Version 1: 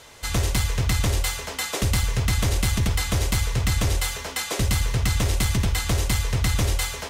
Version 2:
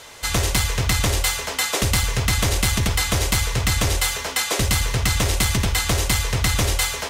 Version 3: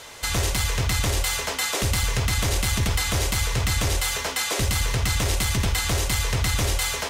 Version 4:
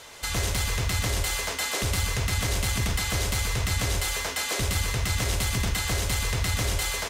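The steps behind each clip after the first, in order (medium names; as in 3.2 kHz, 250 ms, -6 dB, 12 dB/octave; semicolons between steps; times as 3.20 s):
bass shelf 320 Hz -6 dB; trim +6 dB
peak limiter -15 dBFS, peak gain reduction 6.5 dB
delay 127 ms -6 dB; trim -4 dB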